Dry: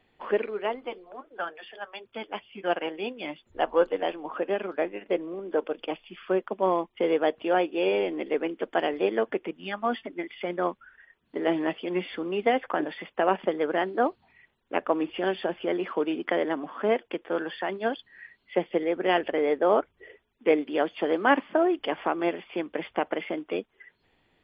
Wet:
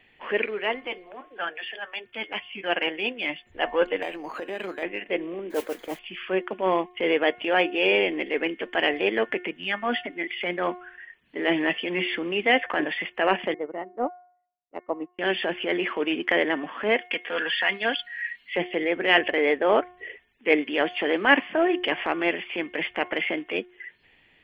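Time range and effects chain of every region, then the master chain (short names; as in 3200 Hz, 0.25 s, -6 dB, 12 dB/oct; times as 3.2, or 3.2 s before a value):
4.02–4.83 compressor 12:1, threshold -28 dBFS + decimation joined by straight lines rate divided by 8×
5.5–5.99 switching spikes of -29 dBFS + running mean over 16 samples + modulation noise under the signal 18 dB
13.54–15.19 polynomial smoothing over 65 samples + upward expander 2.5:1, over -47 dBFS
17.01–18.56 tilt shelf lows -6 dB, about 1100 Hz + comb 4.2 ms, depth 53%
whole clip: band shelf 2300 Hz +10.5 dB 1.1 oct; de-hum 359.3 Hz, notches 6; transient shaper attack -6 dB, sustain 0 dB; gain +2.5 dB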